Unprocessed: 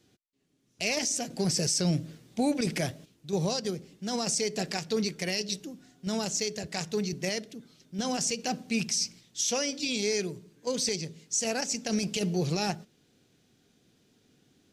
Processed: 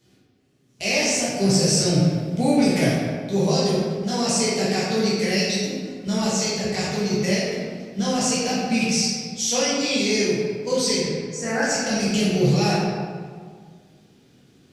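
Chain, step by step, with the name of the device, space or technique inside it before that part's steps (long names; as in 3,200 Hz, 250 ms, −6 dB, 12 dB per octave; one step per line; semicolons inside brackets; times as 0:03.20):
0:11.00–0:11.63: high shelf with overshoot 2,300 Hz −9 dB, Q 3
stairwell (convolution reverb RT60 1.9 s, pre-delay 8 ms, DRR −9 dB)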